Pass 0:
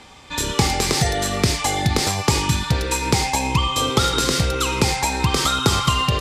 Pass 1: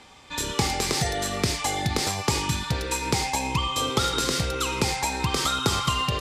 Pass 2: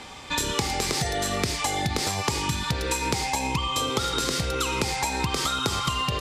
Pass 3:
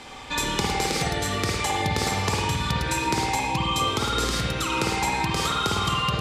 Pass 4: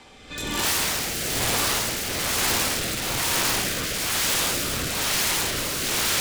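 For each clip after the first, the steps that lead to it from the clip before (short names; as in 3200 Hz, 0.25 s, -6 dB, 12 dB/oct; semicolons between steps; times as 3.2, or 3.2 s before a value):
low shelf 180 Hz -3.5 dB; gain -5 dB
compressor 6:1, threshold -32 dBFS, peak gain reduction 13.5 dB; gain +8.5 dB
spring tank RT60 1.2 s, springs 52 ms, chirp 60 ms, DRR -2 dB; gain -1.5 dB
non-linear reverb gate 0.39 s rising, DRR -8 dB; wrapped overs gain 14 dB; rotary speaker horn 1.1 Hz; gain -3 dB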